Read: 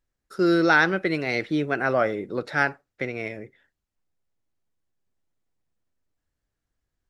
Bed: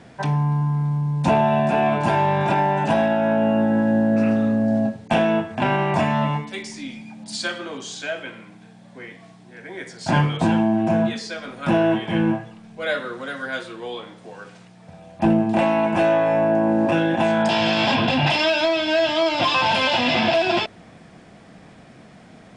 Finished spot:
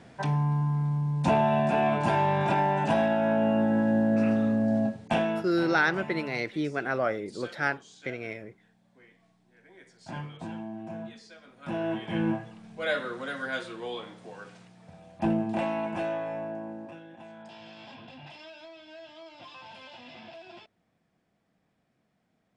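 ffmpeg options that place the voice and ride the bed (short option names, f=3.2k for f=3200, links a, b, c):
-filter_complex "[0:a]adelay=5050,volume=-5.5dB[a];[1:a]volume=9.5dB,afade=t=out:st=5.03:d=0.6:silence=0.199526,afade=t=in:st=11.54:d=1.1:silence=0.177828,afade=t=out:st=14.07:d=2.93:silence=0.0668344[b];[a][b]amix=inputs=2:normalize=0"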